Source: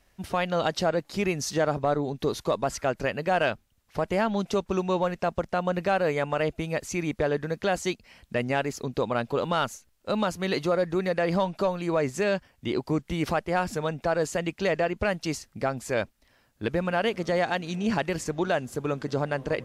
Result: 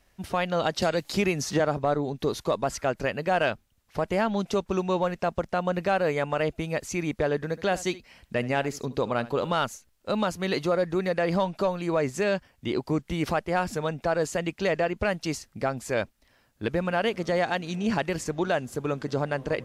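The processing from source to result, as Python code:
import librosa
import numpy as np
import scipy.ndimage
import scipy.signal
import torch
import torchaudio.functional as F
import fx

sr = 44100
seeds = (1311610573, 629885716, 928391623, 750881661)

y = fx.band_squash(x, sr, depth_pct=100, at=(0.82, 1.6))
y = fx.echo_single(y, sr, ms=72, db=-18.0, at=(7.35, 9.53))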